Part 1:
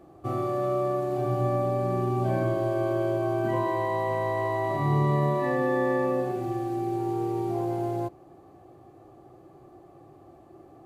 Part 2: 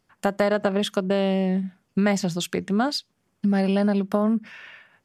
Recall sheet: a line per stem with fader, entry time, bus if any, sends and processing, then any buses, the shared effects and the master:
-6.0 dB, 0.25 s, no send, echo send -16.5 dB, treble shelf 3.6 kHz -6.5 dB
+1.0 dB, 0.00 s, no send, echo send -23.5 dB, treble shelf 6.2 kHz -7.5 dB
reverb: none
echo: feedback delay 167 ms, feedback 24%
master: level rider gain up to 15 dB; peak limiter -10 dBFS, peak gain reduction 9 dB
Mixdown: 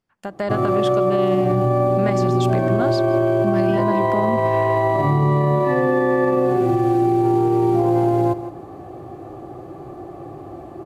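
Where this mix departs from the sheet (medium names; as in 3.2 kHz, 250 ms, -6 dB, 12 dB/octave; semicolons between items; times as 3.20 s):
stem 1 -6.0 dB -> +1.0 dB; stem 2 +1.0 dB -> -9.5 dB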